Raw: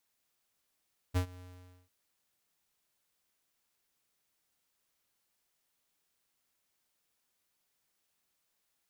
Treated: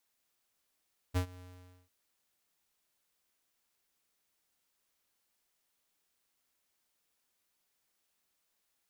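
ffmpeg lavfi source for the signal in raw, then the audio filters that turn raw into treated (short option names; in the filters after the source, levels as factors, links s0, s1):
-f lavfi -i "aevalsrc='0.0447*(2*lt(mod(90.5*t,1),0.5)-1)':d=0.749:s=44100,afade=t=in:d=0.026,afade=t=out:st=0.026:d=0.092:silence=0.075,afade=t=out:st=0.26:d=0.489"
-af "equalizer=f=130:t=o:w=0.58:g=-5"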